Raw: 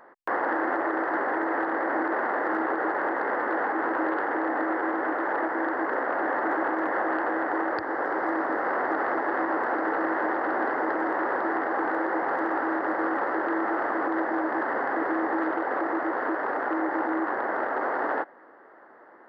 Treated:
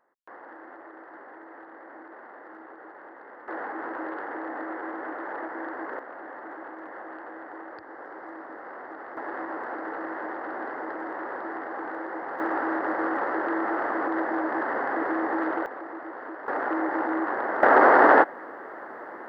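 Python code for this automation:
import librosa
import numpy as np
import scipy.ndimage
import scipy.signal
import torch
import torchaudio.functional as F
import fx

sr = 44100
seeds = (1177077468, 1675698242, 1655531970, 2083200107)

y = fx.gain(x, sr, db=fx.steps((0.0, -19.0), (3.48, -7.5), (5.99, -14.0), (9.17, -7.5), (12.4, -0.5), (15.66, -10.5), (16.48, 0.0), (17.63, 12.0)))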